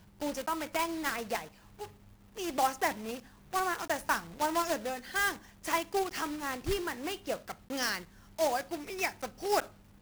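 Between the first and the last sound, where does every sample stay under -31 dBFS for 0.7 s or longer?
1.39–2.39 s

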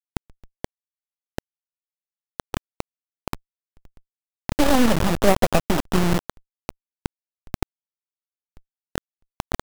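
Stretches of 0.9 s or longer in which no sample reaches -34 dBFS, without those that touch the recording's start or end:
1.38–2.40 s
3.35–4.49 s
7.63–8.96 s

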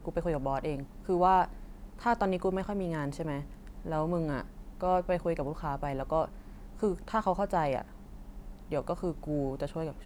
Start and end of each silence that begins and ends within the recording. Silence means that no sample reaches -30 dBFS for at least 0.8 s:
7.81–8.72 s

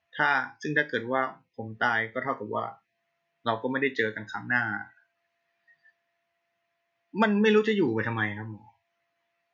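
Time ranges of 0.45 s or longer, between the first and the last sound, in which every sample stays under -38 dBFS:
2.72–3.46 s
4.83–7.14 s

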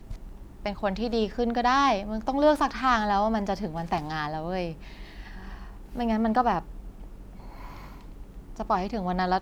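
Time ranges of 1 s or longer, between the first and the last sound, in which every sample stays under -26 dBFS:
4.70–5.97 s
6.59–8.60 s

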